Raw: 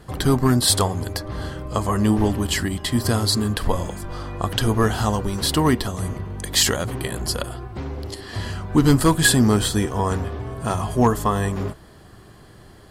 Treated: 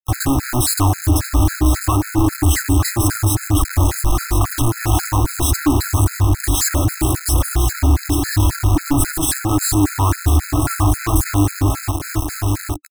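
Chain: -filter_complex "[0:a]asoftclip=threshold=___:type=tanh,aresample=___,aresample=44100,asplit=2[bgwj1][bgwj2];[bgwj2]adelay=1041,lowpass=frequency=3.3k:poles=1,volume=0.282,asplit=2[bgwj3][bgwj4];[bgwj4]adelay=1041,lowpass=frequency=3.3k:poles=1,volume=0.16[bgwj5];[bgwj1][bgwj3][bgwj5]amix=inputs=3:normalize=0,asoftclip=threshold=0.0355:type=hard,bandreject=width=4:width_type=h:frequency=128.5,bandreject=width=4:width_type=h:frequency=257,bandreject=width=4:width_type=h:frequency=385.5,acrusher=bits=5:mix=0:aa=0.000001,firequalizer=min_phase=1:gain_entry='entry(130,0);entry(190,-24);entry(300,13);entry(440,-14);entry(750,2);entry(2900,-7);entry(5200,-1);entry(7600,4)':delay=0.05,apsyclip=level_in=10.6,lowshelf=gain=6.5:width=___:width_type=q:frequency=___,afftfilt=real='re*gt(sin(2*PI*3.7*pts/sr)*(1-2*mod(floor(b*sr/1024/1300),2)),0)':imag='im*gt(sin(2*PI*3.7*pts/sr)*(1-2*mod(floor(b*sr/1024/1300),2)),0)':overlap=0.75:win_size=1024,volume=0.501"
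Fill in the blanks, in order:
0.0944, 32000, 1.5, 110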